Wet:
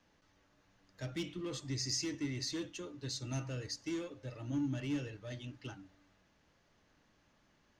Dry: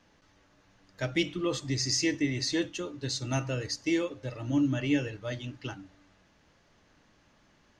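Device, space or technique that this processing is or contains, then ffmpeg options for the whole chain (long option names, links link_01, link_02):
one-band saturation: -filter_complex "[0:a]acrossover=split=310|3900[link_01][link_02][link_03];[link_02]asoftclip=type=tanh:threshold=-37dB[link_04];[link_01][link_04][link_03]amix=inputs=3:normalize=0,volume=-7dB"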